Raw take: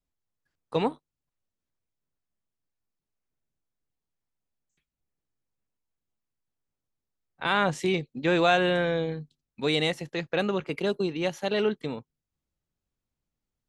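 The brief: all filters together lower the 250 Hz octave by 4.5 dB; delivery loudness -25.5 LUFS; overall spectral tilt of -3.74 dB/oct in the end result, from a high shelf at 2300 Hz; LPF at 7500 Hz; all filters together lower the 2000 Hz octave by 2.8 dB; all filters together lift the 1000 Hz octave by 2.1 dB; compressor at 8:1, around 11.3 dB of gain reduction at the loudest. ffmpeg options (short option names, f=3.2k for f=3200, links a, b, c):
-af "lowpass=7.5k,equalizer=f=250:t=o:g=-8,equalizer=f=1k:t=o:g=5.5,equalizer=f=2k:t=o:g=-4,highshelf=f=2.3k:g=-4,acompressor=threshold=-28dB:ratio=8,volume=9dB"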